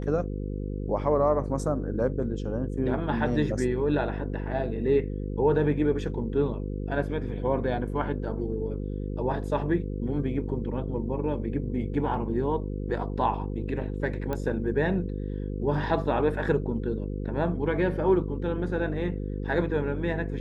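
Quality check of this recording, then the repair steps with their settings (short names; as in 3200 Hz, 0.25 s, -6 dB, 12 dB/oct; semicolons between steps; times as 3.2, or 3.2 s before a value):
buzz 50 Hz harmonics 10 -32 dBFS
14.33 pop -18 dBFS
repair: de-click; de-hum 50 Hz, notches 10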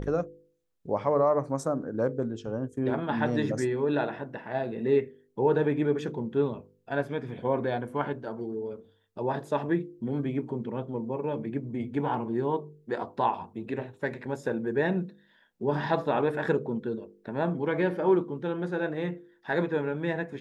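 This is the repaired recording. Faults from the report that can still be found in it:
none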